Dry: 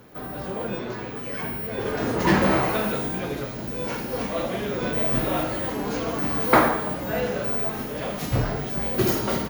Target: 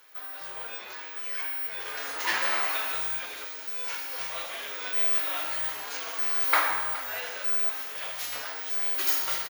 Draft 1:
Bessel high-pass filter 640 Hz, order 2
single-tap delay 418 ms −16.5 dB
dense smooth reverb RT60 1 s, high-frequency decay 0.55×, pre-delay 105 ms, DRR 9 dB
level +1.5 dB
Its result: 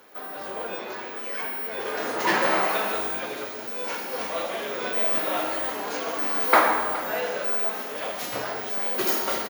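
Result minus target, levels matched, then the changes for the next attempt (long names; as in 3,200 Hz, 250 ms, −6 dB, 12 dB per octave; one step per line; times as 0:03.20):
500 Hz band +12.0 dB
change: Bessel high-pass filter 1,900 Hz, order 2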